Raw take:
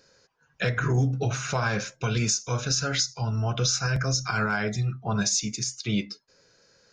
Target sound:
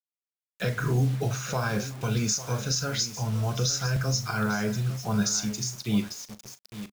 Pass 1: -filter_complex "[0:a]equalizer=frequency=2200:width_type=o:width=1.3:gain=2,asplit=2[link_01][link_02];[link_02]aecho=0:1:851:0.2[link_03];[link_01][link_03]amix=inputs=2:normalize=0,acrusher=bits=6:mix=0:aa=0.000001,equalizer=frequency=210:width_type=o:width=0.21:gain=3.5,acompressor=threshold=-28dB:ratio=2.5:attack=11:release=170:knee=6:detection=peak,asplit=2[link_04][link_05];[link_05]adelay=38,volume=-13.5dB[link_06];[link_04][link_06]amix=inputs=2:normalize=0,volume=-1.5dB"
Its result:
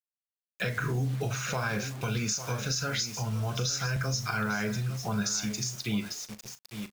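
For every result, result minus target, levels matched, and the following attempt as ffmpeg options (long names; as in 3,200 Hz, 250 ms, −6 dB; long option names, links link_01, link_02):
downward compressor: peak gain reduction +6.5 dB; 2,000 Hz band +4.0 dB
-filter_complex "[0:a]equalizer=frequency=2200:width_type=o:width=1.3:gain=2,asplit=2[link_01][link_02];[link_02]aecho=0:1:851:0.2[link_03];[link_01][link_03]amix=inputs=2:normalize=0,acrusher=bits=6:mix=0:aa=0.000001,equalizer=frequency=210:width_type=o:width=0.21:gain=3.5,asplit=2[link_04][link_05];[link_05]adelay=38,volume=-13.5dB[link_06];[link_04][link_06]amix=inputs=2:normalize=0,volume=-1.5dB"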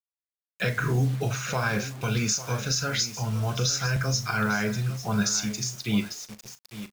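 2,000 Hz band +4.0 dB
-filter_complex "[0:a]equalizer=frequency=2200:width_type=o:width=1.3:gain=-5,asplit=2[link_01][link_02];[link_02]aecho=0:1:851:0.2[link_03];[link_01][link_03]amix=inputs=2:normalize=0,acrusher=bits=6:mix=0:aa=0.000001,equalizer=frequency=210:width_type=o:width=0.21:gain=3.5,asplit=2[link_04][link_05];[link_05]adelay=38,volume=-13.5dB[link_06];[link_04][link_06]amix=inputs=2:normalize=0,volume=-1.5dB"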